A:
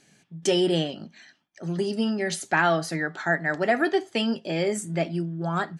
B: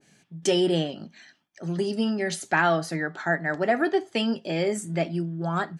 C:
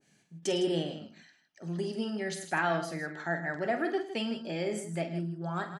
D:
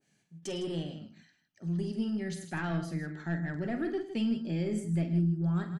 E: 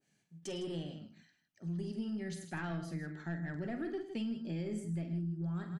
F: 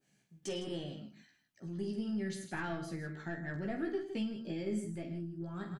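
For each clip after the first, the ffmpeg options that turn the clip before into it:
-af "adynamicequalizer=threshold=0.0158:dfrequency=1700:dqfactor=0.7:tfrequency=1700:tqfactor=0.7:attack=5:release=100:ratio=0.375:range=2.5:mode=cutabove:tftype=highshelf"
-af "aecho=1:1:47|106|158:0.335|0.188|0.266,volume=0.398"
-af "aeval=exprs='0.15*(cos(1*acos(clip(val(0)/0.15,-1,1)))-cos(1*PI/2))+0.00335*(cos(4*acos(clip(val(0)/0.15,-1,1)))-cos(4*PI/2))+0.0075*(cos(5*acos(clip(val(0)/0.15,-1,1)))-cos(5*PI/2))':c=same,asubboost=boost=8.5:cutoff=240,volume=0.422"
-af "acompressor=threshold=0.0316:ratio=6,volume=0.631"
-filter_complex "[0:a]asplit=2[s0][s1];[s1]adelay=15,volume=0.631[s2];[s0][s2]amix=inputs=2:normalize=0,volume=1.12"

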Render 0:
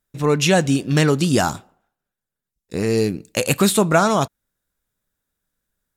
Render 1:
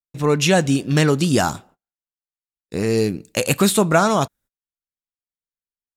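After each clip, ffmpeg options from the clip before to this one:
-af "agate=range=0.0398:threshold=0.00398:ratio=16:detection=peak"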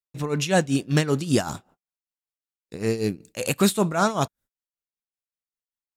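-af "tremolo=f=5.2:d=0.79,volume=0.794"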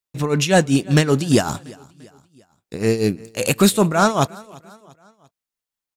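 -af "aecho=1:1:344|688|1032:0.0631|0.0303|0.0145,acontrast=63"

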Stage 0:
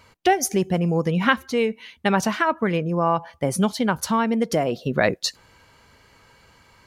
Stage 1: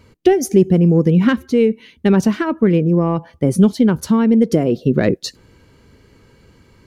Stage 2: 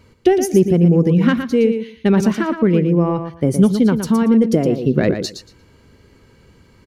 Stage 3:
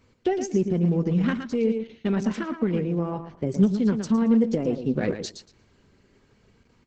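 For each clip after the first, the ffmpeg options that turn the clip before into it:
-af "acontrast=36,lowshelf=f=530:t=q:w=1.5:g=10.5,volume=0.447"
-af "aecho=1:1:116|232|348:0.398|0.0677|0.0115,volume=0.891"
-af "flanger=delay=3.9:depth=1.2:regen=65:speed=0.42:shape=sinusoidal,volume=0.562" -ar 48000 -c:a libopus -b:a 10k

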